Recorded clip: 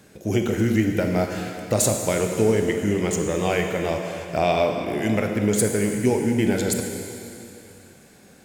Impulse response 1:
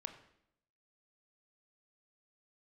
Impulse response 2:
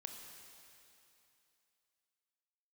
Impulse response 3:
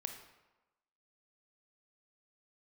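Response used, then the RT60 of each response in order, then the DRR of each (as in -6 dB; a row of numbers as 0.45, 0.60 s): 2; 0.75, 2.8, 1.1 s; 7.0, 3.0, 5.0 dB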